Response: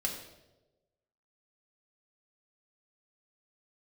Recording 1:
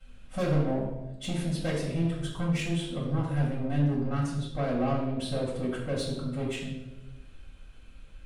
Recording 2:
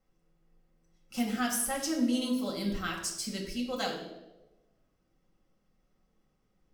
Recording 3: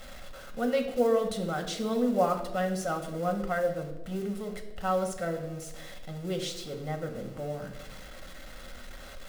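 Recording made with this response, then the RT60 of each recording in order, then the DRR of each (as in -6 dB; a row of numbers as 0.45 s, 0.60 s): 2; 1.1 s, 1.1 s, 1.1 s; -11.0 dB, -1.5 dB, 4.0 dB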